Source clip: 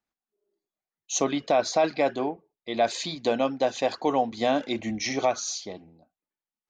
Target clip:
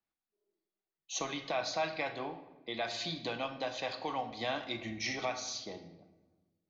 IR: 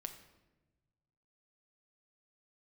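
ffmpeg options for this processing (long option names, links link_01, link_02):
-filter_complex "[0:a]lowpass=frequency=5500:width=0.5412,lowpass=frequency=5500:width=1.3066,acrossover=split=120|930[link_01][link_02][link_03];[link_02]acompressor=threshold=-36dB:ratio=6[link_04];[link_01][link_04][link_03]amix=inputs=3:normalize=0[link_05];[1:a]atrim=start_sample=2205[link_06];[link_05][link_06]afir=irnorm=-1:irlink=0,volume=-1dB"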